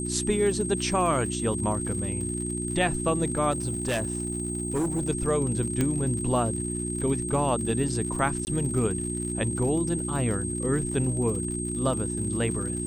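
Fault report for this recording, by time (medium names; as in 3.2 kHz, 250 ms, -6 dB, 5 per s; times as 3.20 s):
crackle 86 per s -34 dBFS
hum 60 Hz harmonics 6 -32 dBFS
whine 8.4 kHz -33 dBFS
3.51–5.10 s: clipped -23 dBFS
5.81 s: pop -12 dBFS
8.45–8.47 s: dropout 19 ms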